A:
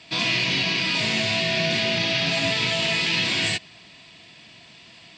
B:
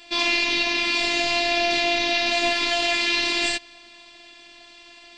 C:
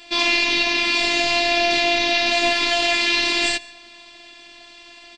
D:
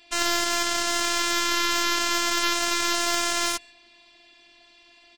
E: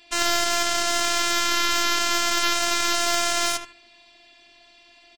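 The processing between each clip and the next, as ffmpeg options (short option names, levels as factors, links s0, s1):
-af "afftfilt=real='hypot(re,im)*cos(PI*b)':imag='0':win_size=512:overlap=0.75,volume=1.68"
-af "aecho=1:1:144:0.0708,volume=1.41"
-af "aeval=exprs='0.75*(cos(1*acos(clip(val(0)/0.75,-1,1)))-cos(1*PI/2))+0.188*(cos(3*acos(clip(val(0)/0.75,-1,1)))-cos(3*PI/2))+0.0596*(cos(6*acos(clip(val(0)/0.75,-1,1)))-cos(6*PI/2))+0.075*(cos(7*acos(clip(val(0)/0.75,-1,1)))-cos(7*PI/2))':c=same,volume=0.708"
-filter_complex "[0:a]asplit=2[s0][s1];[s1]adelay=77,lowpass=f=2100:p=1,volume=0.422,asplit=2[s2][s3];[s3]adelay=77,lowpass=f=2100:p=1,volume=0.24,asplit=2[s4][s5];[s5]adelay=77,lowpass=f=2100:p=1,volume=0.24[s6];[s0][s2][s4][s6]amix=inputs=4:normalize=0,volume=1.19"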